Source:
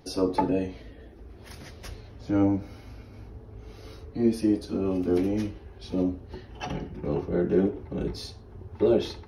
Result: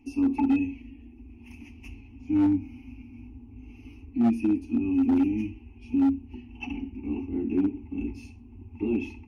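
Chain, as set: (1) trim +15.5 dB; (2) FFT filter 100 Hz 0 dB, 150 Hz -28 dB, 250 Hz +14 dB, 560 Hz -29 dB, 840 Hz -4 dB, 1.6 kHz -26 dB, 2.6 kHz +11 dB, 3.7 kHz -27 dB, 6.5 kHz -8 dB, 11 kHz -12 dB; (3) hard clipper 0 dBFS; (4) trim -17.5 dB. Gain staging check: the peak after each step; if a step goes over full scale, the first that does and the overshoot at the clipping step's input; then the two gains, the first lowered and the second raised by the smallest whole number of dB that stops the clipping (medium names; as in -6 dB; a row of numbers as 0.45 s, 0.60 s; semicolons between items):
+4.5 dBFS, +8.0 dBFS, 0.0 dBFS, -17.5 dBFS; step 1, 8.0 dB; step 1 +7.5 dB, step 4 -9.5 dB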